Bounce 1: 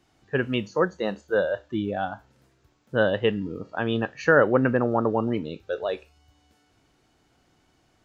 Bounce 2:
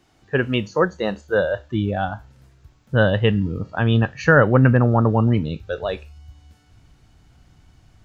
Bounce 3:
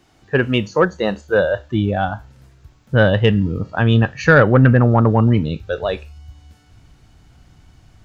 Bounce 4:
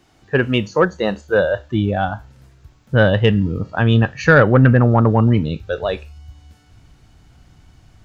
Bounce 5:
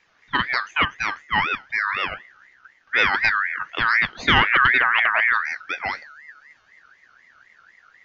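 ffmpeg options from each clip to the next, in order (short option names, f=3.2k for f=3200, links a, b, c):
-af "asubboost=boost=6.5:cutoff=140,volume=5dB"
-af "asoftclip=type=tanh:threshold=-4.5dB,volume=4dB"
-af anull
-af "aresample=11025,aresample=44100,aeval=exprs='val(0)*sin(2*PI*1700*n/s+1700*0.2/4*sin(2*PI*4*n/s))':c=same,volume=-3dB"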